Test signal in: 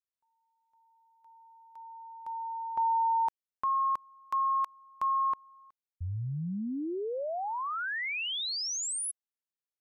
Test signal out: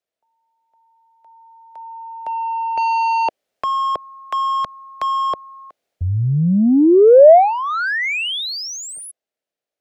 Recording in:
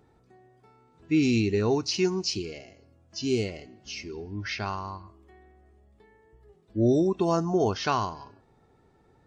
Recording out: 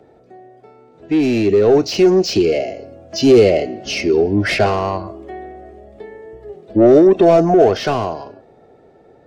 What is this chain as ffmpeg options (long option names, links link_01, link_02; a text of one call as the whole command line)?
ffmpeg -i in.wav -filter_complex "[0:a]asplit=2[link_01][link_02];[link_02]highpass=frequency=720:poles=1,volume=19dB,asoftclip=type=tanh:threshold=-13.5dB[link_03];[link_01][link_03]amix=inputs=2:normalize=0,lowpass=frequency=2200:poles=1,volume=-6dB,acrossover=split=280|400|1700[link_04][link_05][link_06][link_07];[link_04]alimiter=level_in=3dB:limit=-24dB:level=0:latency=1,volume=-3dB[link_08];[link_08][link_05][link_06][link_07]amix=inputs=4:normalize=0,dynaudnorm=framelen=260:gausssize=17:maxgain=11dB,asoftclip=type=tanh:threshold=-11dB,lowshelf=frequency=790:width_type=q:width=3:gain=6.5" out.wav